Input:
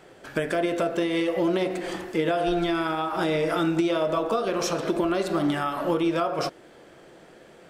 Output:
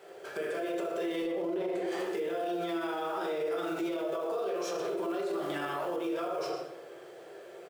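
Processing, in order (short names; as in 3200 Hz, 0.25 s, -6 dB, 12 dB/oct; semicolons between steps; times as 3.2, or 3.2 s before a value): companded quantiser 6-bit; resonant low shelf 310 Hz -9 dB, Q 3; compressor, threshold -23 dBFS, peak gain reduction 7.5 dB; HPF 78 Hz 24 dB/oct; 1.22–1.87 tilt -2 dB/oct; on a send: echo 0.12 s -13.5 dB; on the sum: shoebox room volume 180 m³, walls mixed, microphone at 1.2 m; limiter -20 dBFS, peak gain reduction 11.5 dB; gain -6 dB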